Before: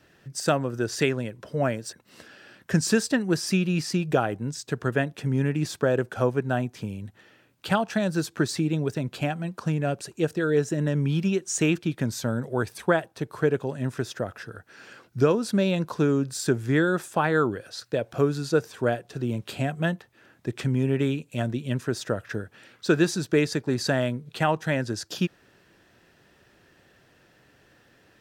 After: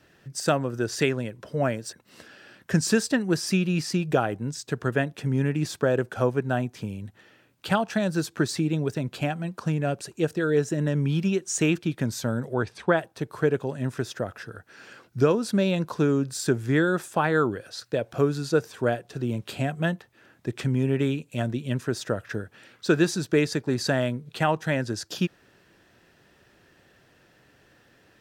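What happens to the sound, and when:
12.54–12.97 s: low-pass 5.1 kHz

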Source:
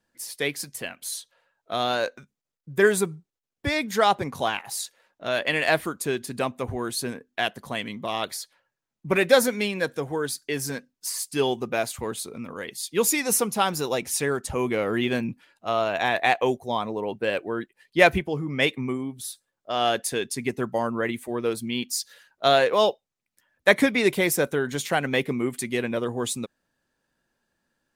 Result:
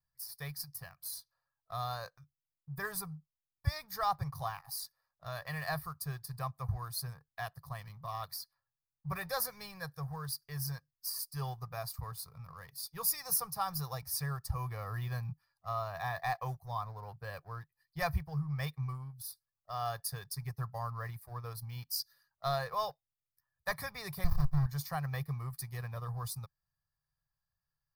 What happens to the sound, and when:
24.24–24.66 s: sliding maximum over 65 samples
whole clip: comb 1.7 ms, depth 64%; waveshaping leveller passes 1; FFT filter 150 Hz 0 dB, 220 Hz -26 dB, 340 Hz -27 dB, 610 Hz -22 dB, 860 Hz -4 dB, 1.6 kHz -13 dB, 3.1 kHz -27 dB, 4.9 kHz -3 dB, 7.1 kHz -20 dB, 14 kHz +2 dB; trim -6 dB

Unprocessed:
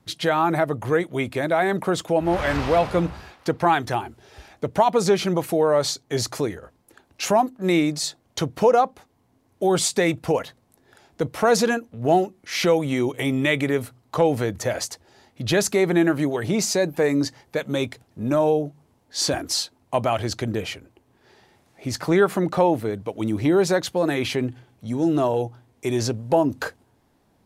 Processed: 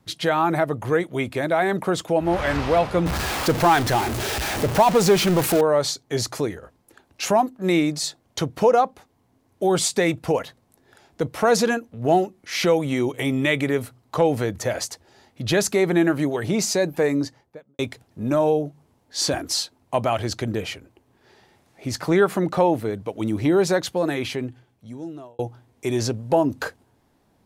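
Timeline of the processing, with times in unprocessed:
3.06–5.61 s: jump at every zero crossing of -20.5 dBFS
16.98–17.79 s: studio fade out
23.86–25.39 s: fade out

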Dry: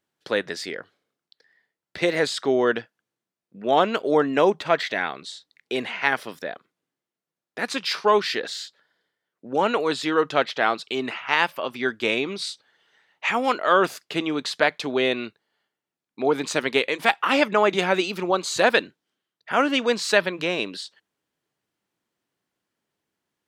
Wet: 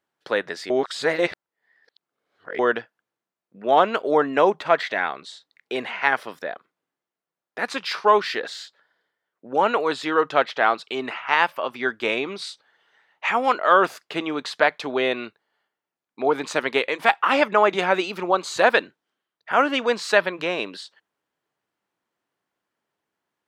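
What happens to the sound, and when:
0.70–2.59 s: reverse
whole clip: peaking EQ 1 kHz +9 dB 2.8 oct; trim -5.5 dB

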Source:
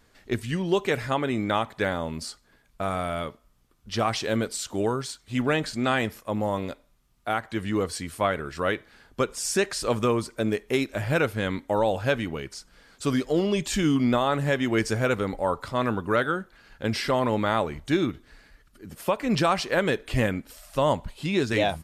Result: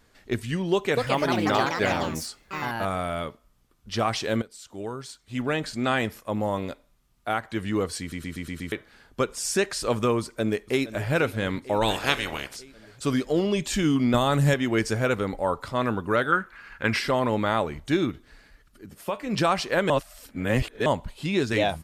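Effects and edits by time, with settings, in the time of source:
0.72–3.09 s: ever faster or slower copies 249 ms, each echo +4 st, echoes 3
4.42–5.96 s: fade in, from -17.5 dB
8.00 s: stutter in place 0.12 s, 6 plays
10.20–11.11 s: echo throw 470 ms, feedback 70%, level -15.5 dB
11.81–12.55 s: spectral peaks clipped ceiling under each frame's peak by 24 dB
14.14–14.54 s: tone controls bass +8 dB, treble +10 dB
16.32–16.99 s: high-order bell 1.6 kHz +10.5 dB
18.86–19.38 s: feedback comb 100 Hz, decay 0.2 s
19.90–20.86 s: reverse

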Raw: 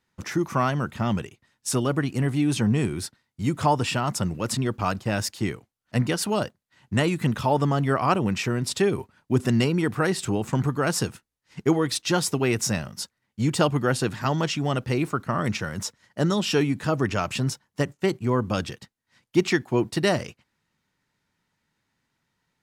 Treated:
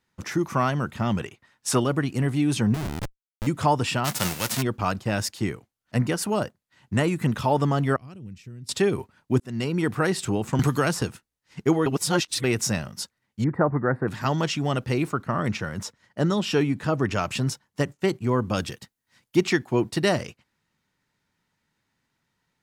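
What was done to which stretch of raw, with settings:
1.20–1.84 s: peaking EQ 1.2 kHz +7.5 dB 2.9 oct
2.74–3.47 s: Schmitt trigger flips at -25 dBFS
4.04–4.61 s: formants flattened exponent 0.3
5.42–7.29 s: dynamic bell 3.7 kHz, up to -6 dB, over -44 dBFS, Q 1.4
7.96–8.69 s: amplifier tone stack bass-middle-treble 10-0-1
9.40–9.84 s: fade in
10.59–11.02 s: three bands compressed up and down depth 100%
11.86–12.44 s: reverse
13.44–14.08 s: elliptic low-pass 1.9 kHz
15.12–17.11 s: treble shelf 4 kHz -6 dB
18.56–19.37 s: treble shelf 9.3 kHz +9.5 dB

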